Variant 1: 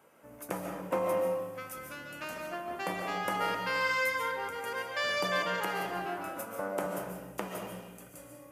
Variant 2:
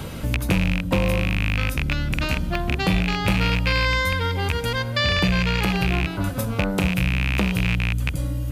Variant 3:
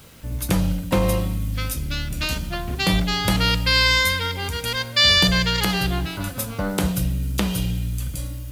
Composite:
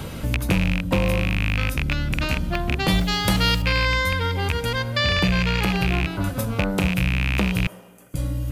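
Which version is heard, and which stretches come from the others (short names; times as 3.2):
2
2.88–3.62 from 3
7.67–8.14 from 1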